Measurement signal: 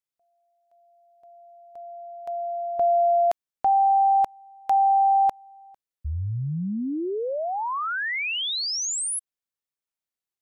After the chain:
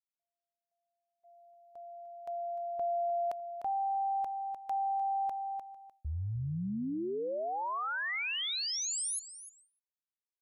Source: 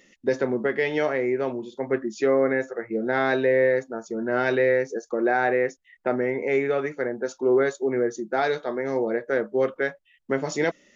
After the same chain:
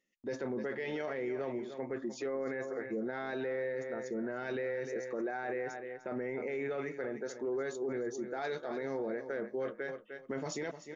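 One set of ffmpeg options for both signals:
-filter_complex "[0:a]asplit=2[a][b];[b]aecho=0:1:301|602:0.2|0.0419[c];[a][c]amix=inputs=2:normalize=0,agate=range=-19dB:threshold=-48dB:ratio=3:release=226:detection=rms,alimiter=limit=-21.5dB:level=0:latency=1:release=14,volume=-7.5dB"

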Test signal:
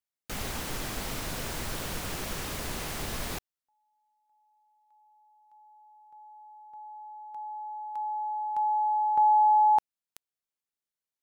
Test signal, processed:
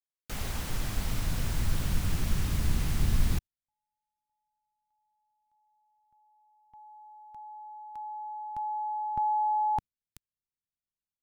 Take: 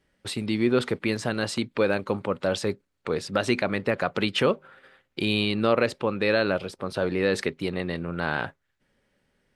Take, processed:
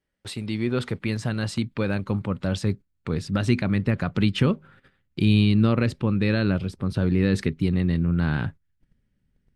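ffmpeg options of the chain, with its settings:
-af "asubboost=boost=10.5:cutoff=180,agate=range=-9dB:threshold=-52dB:ratio=16:release=50:detection=rms,volume=-3dB"

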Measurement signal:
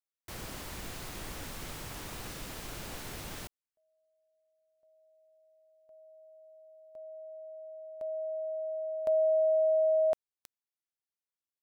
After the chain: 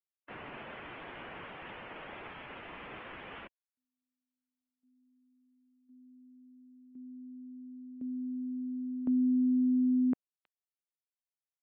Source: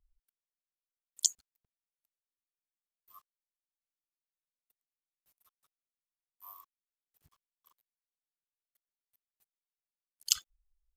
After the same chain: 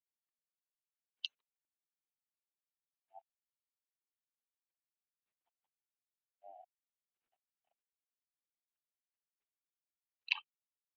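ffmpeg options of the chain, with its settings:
-af "asubboost=boost=6.5:cutoff=190,highpass=f=530:t=q:w=0.5412,highpass=f=530:t=q:w=1.307,lowpass=f=3.5k:t=q:w=0.5176,lowpass=f=3.5k:t=q:w=0.7071,lowpass=f=3.5k:t=q:w=1.932,afreqshift=-380,afftdn=nr=16:nf=-53,volume=3.5dB"

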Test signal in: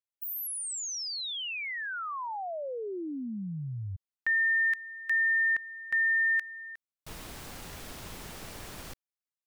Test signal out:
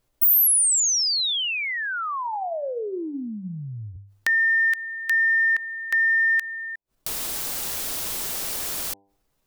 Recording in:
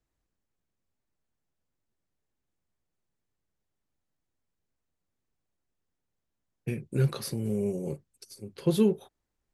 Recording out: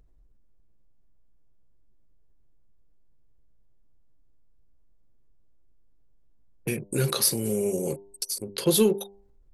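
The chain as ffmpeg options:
-filter_complex "[0:a]acrossover=split=2700[a][b];[b]crystalizer=i=4.5:c=0[c];[a][c]amix=inputs=2:normalize=0,anlmdn=0.1,bass=f=250:g=-9,treble=f=4k:g=-5,asplit=2[d][e];[e]acompressor=mode=upward:threshold=-28dB:ratio=2.5:attack=13:release=63:knee=2.83:detection=peak,volume=-3dB[f];[d][f]amix=inputs=2:normalize=0,asoftclip=type=tanh:threshold=-7.5dB,bandreject=f=99.43:t=h:w=4,bandreject=f=198.86:t=h:w=4,bandreject=f=298.29:t=h:w=4,bandreject=f=397.72:t=h:w=4,bandreject=f=497.15:t=h:w=4,bandreject=f=596.58:t=h:w=4,bandreject=f=696.01:t=h:w=4,bandreject=f=795.44:t=h:w=4,bandreject=f=894.87:t=h:w=4,bandreject=f=994.3:t=h:w=4,volume=1.5dB"

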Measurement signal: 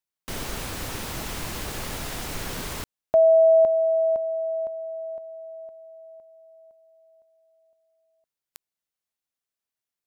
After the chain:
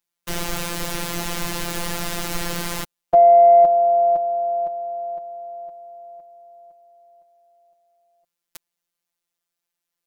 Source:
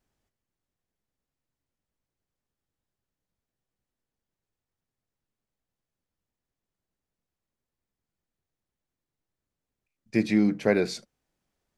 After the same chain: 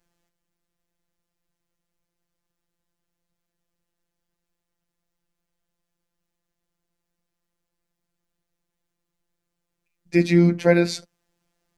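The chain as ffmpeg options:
-af "afftfilt=real='hypot(re,im)*cos(PI*b)':imag='0':win_size=1024:overlap=0.75,acontrast=33,volume=4dB"

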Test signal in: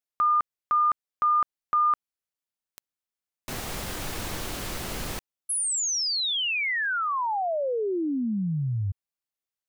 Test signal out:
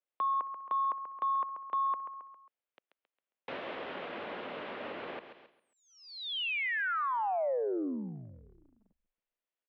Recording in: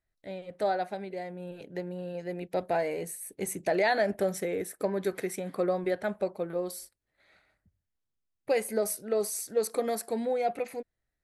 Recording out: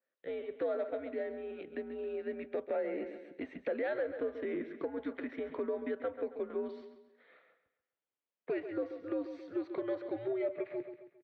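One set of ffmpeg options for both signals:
-af "equalizer=f=660:w=2.9:g=5.5,aecho=1:1:135|270|405|540:0.224|0.0873|0.0341|0.0133,acompressor=threshold=-27dB:ratio=10:attack=1:release=439:knee=6:detection=rms,asoftclip=type=tanh:threshold=-21.5dB,highpass=f=380:t=q:w=0.5412,highpass=f=380:t=q:w=1.307,lowpass=f=3.4k:t=q:w=0.5176,lowpass=f=3.4k:t=q:w=0.7071,lowpass=f=3.4k:t=q:w=1.932,afreqshift=-120,adynamicequalizer=threshold=0.00355:dfrequency=2500:dqfactor=0.7:tfrequency=2500:tqfactor=0.7:attack=5:release=100:ratio=0.375:range=2.5:mode=cutabove:tftype=highshelf"

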